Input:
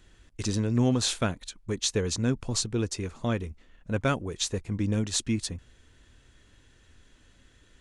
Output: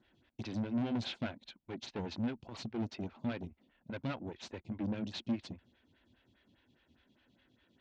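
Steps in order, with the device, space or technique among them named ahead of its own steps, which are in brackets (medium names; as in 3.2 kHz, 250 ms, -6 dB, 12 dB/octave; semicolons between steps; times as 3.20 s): vibe pedal into a guitar amplifier (lamp-driven phase shifter 4.9 Hz; valve stage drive 33 dB, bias 0.7; cabinet simulation 100–4200 Hz, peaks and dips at 230 Hz +5 dB, 450 Hz -8 dB, 1.2 kHz -8 dB, 1.8 kHz -4 dB); trim +1 dB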